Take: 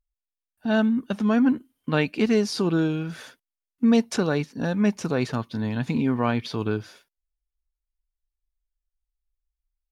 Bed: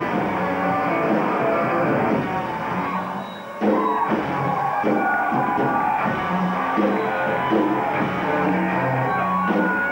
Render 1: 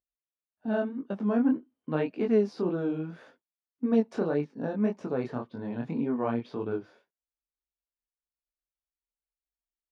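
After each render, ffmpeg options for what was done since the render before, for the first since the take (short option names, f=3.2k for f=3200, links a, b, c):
-af "flanger=delay=20:depth=5.8:speed=1.8,bandpass=f=460:t=q:w=0.74:csg=0"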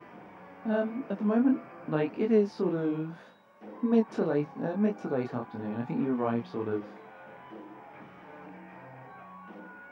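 -filter_complex "[1:a]volume=-27dB[a];[0:a][a]amix=inputs=2:normalize=0"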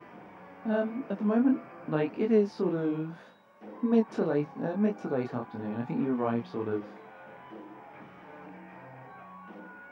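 -af anull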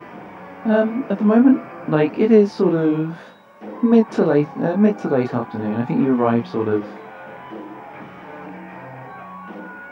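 -af "volume=12dB,alimiter=limit=-3dB:level=0:latency=1"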